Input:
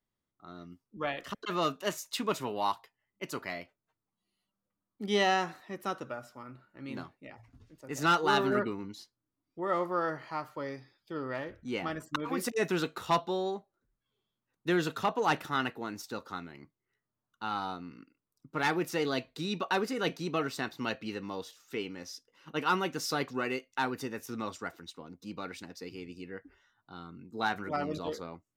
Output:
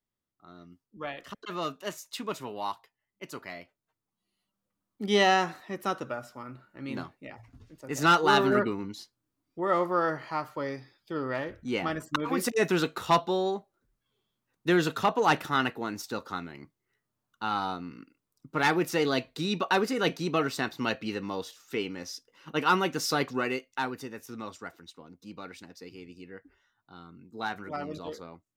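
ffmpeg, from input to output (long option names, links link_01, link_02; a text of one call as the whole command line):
ffmpeg -i in.wav -af "volume=4.5dB,afade=type=in:start_time=3.53:duration=1.68:silence=0.421697,afade=type=out:start_time=23.27:duration=0.77:silence=0.446684" out.wav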